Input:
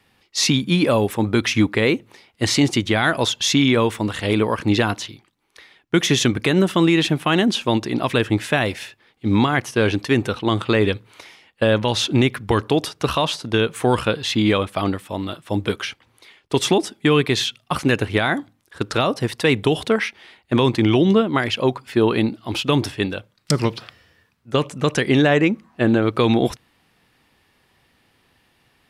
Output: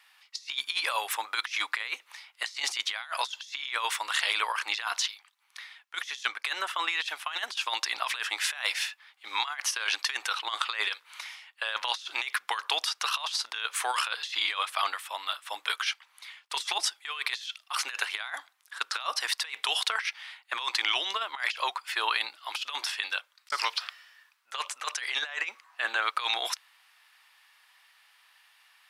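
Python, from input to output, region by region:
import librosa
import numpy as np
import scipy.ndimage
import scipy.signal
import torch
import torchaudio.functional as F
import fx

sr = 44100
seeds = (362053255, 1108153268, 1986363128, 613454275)

y = fx.chain(x, sr, fx.high_shelf(hz=2700.0, db=-4.5),
    fx.band_widen(depth_pct=100), at=(6.23, 7.33))
y = scipy.signal.sosfilt(scipy.signal.butter(4, 990.0, 'highpass', fs=sr, output='sos'), y)
y = fx.dynamic_eq(y, sr, hz=5000.0, q=1.6, threshold_db=-40.0, ratio=4.0, max_db=5)
y = fx.over_compress(y, sr, threshold_db=-28.0, ratio=-0.5)
y = y * 10.0 ** (-2.0 / 20.0)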